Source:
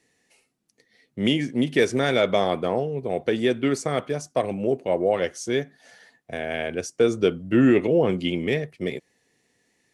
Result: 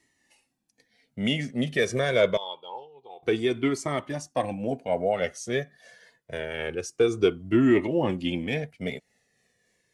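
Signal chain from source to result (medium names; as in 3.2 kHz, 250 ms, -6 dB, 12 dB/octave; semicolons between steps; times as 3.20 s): tremolo 3.6 Hz, depth 29%; 2.37–3.23 s: two resonant band-passes 1.7 kHz, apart 1.9 oct; Shepard-style flanger falling 0.26 Hz; trim +3.5 dB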